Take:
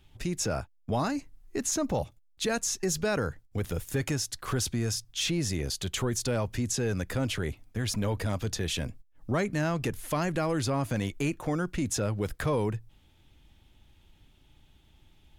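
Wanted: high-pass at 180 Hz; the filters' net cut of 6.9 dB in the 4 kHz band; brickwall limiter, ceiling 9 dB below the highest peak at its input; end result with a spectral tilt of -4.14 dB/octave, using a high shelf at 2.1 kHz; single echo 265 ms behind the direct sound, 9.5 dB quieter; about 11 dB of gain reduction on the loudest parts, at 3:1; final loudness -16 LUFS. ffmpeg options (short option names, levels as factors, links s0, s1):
-af "highpass=180,highshelf=f=2100:g=-6,equalizer=f=4000:t=o:g=-3,acompressor=threshold=0.00891:ratio=3,alimiter=level_in=2.99:limit=0.0631:level=0:latency=1,volume=0.335,aecho=1:1:265:0.335,volume=25.1"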